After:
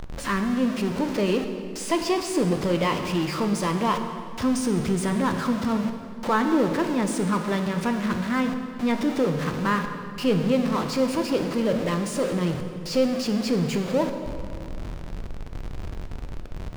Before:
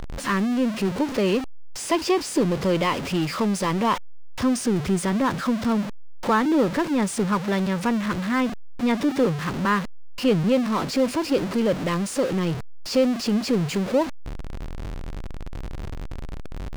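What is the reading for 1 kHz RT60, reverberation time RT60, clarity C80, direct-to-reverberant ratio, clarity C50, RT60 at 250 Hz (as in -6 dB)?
2.2 s, 2.3 s, 8.0 dB, 5.5 dB, 7.0 dB, 2.8 s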